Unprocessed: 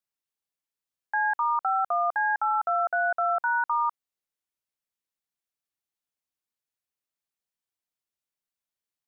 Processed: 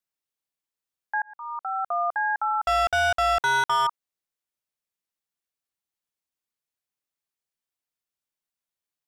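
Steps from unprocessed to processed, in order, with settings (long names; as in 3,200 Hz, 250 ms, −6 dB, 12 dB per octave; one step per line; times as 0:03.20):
0:01.22–0:02.00: fade in
0:02.67–0:03.87: leveller curve on the samples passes 3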